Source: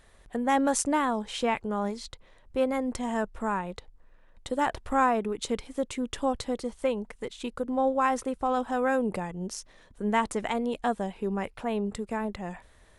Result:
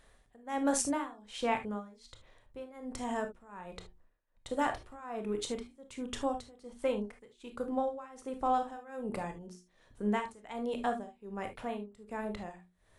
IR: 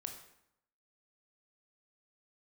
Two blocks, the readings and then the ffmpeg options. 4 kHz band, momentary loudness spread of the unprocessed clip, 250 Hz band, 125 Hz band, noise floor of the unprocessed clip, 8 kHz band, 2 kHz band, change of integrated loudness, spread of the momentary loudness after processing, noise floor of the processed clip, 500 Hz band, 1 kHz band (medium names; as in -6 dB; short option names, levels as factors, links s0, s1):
-6.5 dB, 12 LU, -7.5 dB, -7.5 dB, -58 dBFS, -4.5 dB, -8.5 dB, -7.0 dB, 17 LU, -68 dBFS, -7.5 dB, -7.5 dB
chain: -filter_complex "[0:a]tremolo=f=1.3:d=0.93,bandreject=f=60:t=h:w=6,bandreject=f=120:t=h:w=6,bandreject=f=180:t=h:w=6,bandreject=f=240:t=h:w=6,bandreject=f=300:t=h:w=6,bandreject=f=360:t=h:w=6[s0];[1:a]atrim=start_sample=2205,atrim=end_sample=3528[s1];[s0][s1]afir=irnorm=-1:irlink=0"